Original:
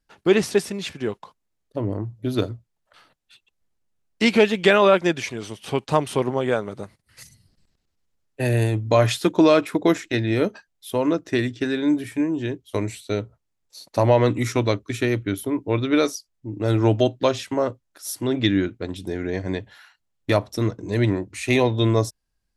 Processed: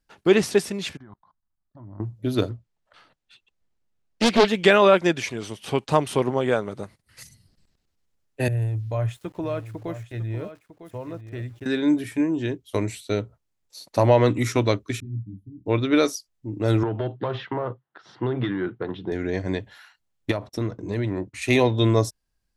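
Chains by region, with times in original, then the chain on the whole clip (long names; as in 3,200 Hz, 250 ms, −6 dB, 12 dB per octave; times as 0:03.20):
0:00.97–0:02.00: output level in coarse steps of 19 dB + high-frequency loss of the air 320 metres + phaser with its sweep stopped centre 1,100 Hz, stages 4
0:02.50–0:04.48: high-frequency loss of the air 53 metres + highs frequency-modulated by the lows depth 0.61 ms
0:08.48–0:11.66: drawn EQ curve 100 Hz 0 dB, 250 Hz −17 dB, 630 Hz −12 dB, 3,200 Hz −18 dB, 4,700 Hz −28 dB, 7,300 Hz −18 dB + centre clipping without the shift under −52.5 dBFS + single-tap delay 952 ms −12.5 dB
0:15.00–0:15.66: inverse Chebyshev low-pass filter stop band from 510 Hz, stop band 50 dB + micro pitch shift up and down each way 37 cents
0:16.83–0:19.12: mid-hump overdrive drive 18 dB, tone 1,000 Hz, clips at −5 dBFS + downward compressor 12 to 1, threshold −19 dBFS + loudspeaker in its box 110–3,300 Hz, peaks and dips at 130 Hz +10 dB, 270 Hz −7 dB, 590 Hz −9 dB, 2,400 Hz −10 dB
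0:20.31–0:21.42: noise gate −45 dBFS, range −27 dB + high-shelf EQ 4,700 Hz −8.5 dB + downward compressor 10 to 1, threshold −21 dBFS
whole clip: no processing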